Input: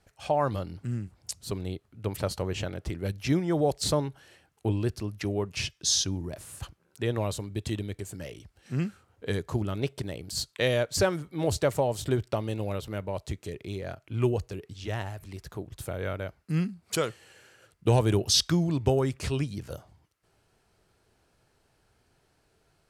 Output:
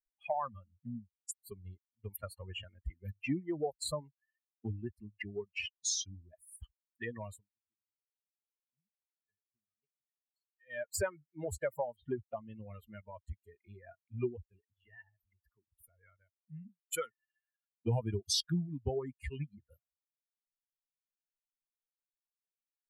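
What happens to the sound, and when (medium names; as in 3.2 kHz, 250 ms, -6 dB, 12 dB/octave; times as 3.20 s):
7.31–10.86 s: dip -22 dB, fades 0.20 s
11.96–12.69 s: steep low-pass 4.4 kHz
14.64–16.80 s: compression 1.5:1, threshold -48 dBFS
whole clip: expander on every frequency bin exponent 3; compression 2:1, threshold -56 dBFS; trim +11.5 dB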